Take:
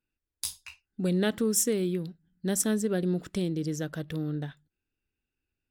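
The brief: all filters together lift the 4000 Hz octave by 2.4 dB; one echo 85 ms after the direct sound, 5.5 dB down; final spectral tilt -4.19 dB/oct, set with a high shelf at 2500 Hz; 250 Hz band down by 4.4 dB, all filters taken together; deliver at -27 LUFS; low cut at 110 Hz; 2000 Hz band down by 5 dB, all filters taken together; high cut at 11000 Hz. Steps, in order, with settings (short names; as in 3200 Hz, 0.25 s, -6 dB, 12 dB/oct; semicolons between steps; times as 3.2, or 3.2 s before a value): HPF 110 Hz; LPF 11000 Hz; bell 250 Hz -6 dB; bell 2000 Hz -7 dB; high shelf 2500 Hz -3.5 dB; bell 4000 Hz +8.5 dB; echo 85 ms -5.5 dB; gain +5 dB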